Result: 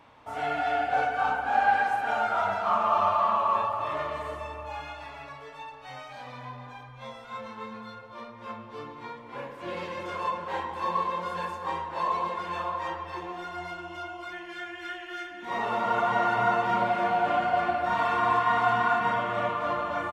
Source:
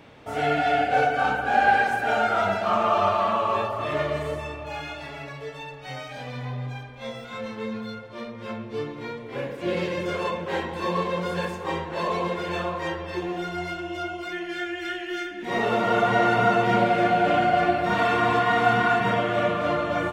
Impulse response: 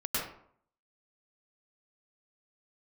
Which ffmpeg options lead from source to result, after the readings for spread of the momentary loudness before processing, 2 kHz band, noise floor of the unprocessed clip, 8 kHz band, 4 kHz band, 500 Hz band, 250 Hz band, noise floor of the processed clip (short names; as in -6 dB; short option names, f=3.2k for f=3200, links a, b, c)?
15 LU, -5.0 dB, -39 dBFS, n/a, -7.5 dB, -7.0 dB, -10.5 dB, -46 dBFS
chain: -filter_complex "[0:a]equalizer=f=160:t=o:w=0.67:g=-6,equalizer=f=400:t=o:w=0.67:g=-5,equalizer=f=1k:t=o:w=0.67:g=11,asplit=2[a][b];[1:a]atrim=start_sample=2205,adelay=145[c];[b][c]afir=irnorm=-1:irlink=0,volume=-16.5dB[d];[a][d]amix=inputs=2:normalize=0,aresample=32000,aresample=44100,volume=-8dB"